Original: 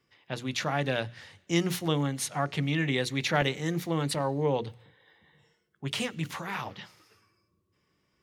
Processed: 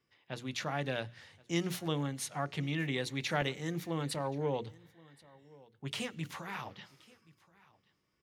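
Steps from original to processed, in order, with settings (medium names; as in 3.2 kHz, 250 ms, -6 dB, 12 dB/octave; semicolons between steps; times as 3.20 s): delay 1076 ms -23.5 dB; trim -6.5 dB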